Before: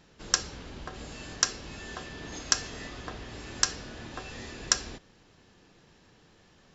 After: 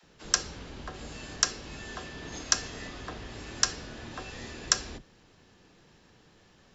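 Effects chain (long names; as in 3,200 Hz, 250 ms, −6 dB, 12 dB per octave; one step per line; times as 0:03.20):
all-pass dispersion lows, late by 40 ms, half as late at 300 Hz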